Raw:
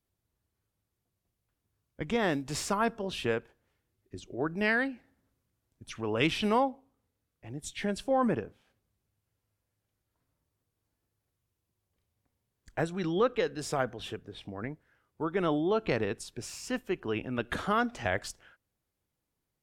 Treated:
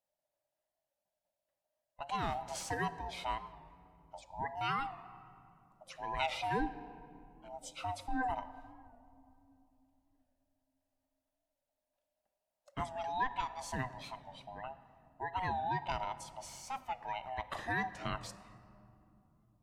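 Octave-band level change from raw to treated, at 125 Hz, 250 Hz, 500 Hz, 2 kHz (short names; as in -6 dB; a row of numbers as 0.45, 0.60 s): -7.5, -13.5, -13.5, -7.0 dB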